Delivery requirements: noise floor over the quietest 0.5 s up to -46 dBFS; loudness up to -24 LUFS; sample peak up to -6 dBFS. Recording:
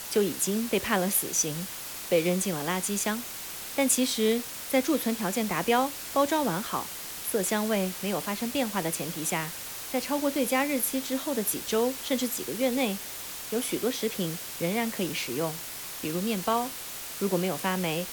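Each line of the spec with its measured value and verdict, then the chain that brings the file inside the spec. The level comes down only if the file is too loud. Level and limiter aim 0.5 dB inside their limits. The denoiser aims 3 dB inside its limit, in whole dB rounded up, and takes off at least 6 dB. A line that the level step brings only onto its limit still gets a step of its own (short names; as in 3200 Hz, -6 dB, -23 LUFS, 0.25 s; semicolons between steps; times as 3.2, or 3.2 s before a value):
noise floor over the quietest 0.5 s -39 dBFS: fail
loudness -28.5 LUFS: OK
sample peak -10.0 dBFS: OK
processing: denoiser 10 dB, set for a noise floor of -39 dBFS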